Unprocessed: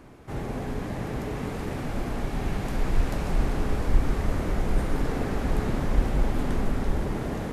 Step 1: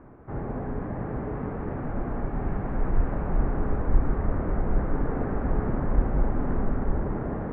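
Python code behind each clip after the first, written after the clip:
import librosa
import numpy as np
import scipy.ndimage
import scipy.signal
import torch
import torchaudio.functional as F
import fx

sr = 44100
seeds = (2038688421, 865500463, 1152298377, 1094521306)

y = scipy.signal.sosfilt(scipy.signal.butter(4, 1600.0, 'lowpass', fs=sr, output='sos'), x)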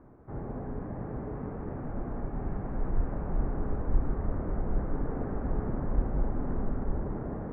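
y = fx.high_shelf(x, sr, hz=2000.0, db=-10.5)
y = y * librosa.db_to_amplitude(-5.0)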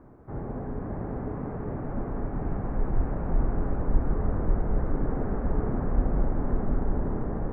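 y = x + 10.0 ** (-5.5 / 20.0) * np.pad(x, (int(548 * sr / 1000.0), 0))[:len(x)]
y = y * librosa.db_to_amplitude(3.0)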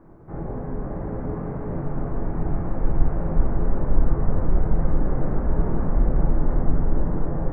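y = fx.room_shoebox(x, sr, seeds[0], volume_m3=100.0, walls='mixed', distance_m=0.72)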